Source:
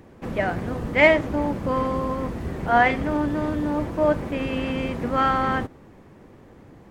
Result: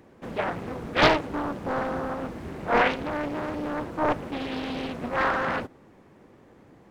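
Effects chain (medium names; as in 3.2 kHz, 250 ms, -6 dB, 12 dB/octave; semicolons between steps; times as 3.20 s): bass shelf 110 Hz -10 dB; loudspeaker Doppler distortion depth 0.88 ms; trim -3.5 dB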